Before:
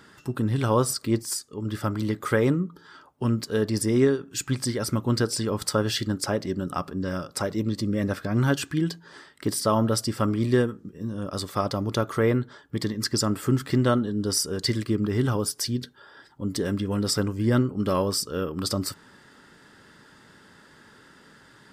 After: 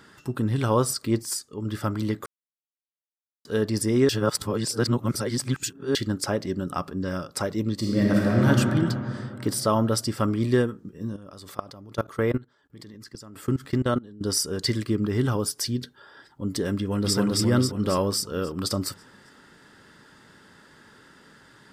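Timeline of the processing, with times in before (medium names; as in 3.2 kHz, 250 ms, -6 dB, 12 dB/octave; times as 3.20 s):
2.26–3.45 s: mute
4.09–5.95 s: reverse
7.78–8.48 s: reverb throw, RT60 2.9 s, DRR -3.5 dB
11.16–14.21 s: level held to a coarse grid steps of 22 dB
16.77–17.17 s: echo throw 270 ms, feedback 55%, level 0 dB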